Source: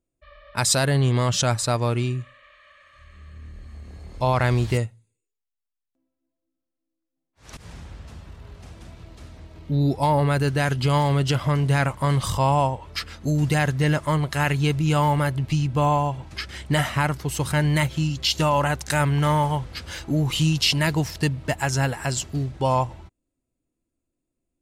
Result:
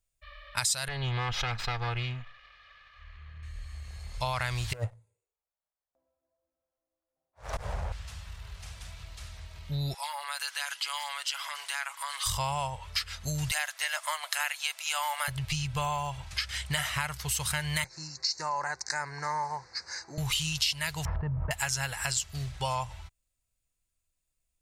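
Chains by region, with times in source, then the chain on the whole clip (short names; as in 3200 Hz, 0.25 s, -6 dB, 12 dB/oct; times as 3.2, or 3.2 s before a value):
0.88–3.43 minimum comb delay 2.4 ms + air absorption 270 m
4.73–7.92 EQ curve 200 Hz 0 dB, 590 Hz +14 dB, 3000 Hz -17 dB + sample leveller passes 1 + negative-ratio compressor -21 dBFS, ratio -0.5
9.94–12.26 HPF 850 Hz 24 dB/oct + comb 7.2 ms, depth 59% + compressor 2:1, threshold -36 dBFS
13.51–15.28 elliptic high-pass 640 Hz, stop band 80 dB + high shelf 9200 Hz +5.5 dB
17.84–20.18 Butterworth band-stop 3200 Hz, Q 0.83 + speaker cabinet 330–5700 Hz, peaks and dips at 340 Hz +8 dB, 620 Hz -7 dB, 1300 Hz -8 dB, 2500 Hz -4 dB, 4300 Hz +9 dB
21.05–21.51 LPF 1100 Hz 24 dB/oct + fast leveller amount 70%
whole clip: passive tone stack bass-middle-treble 10-0-10; compressor 4:1, threshold -35 dBFS; gain +7 dB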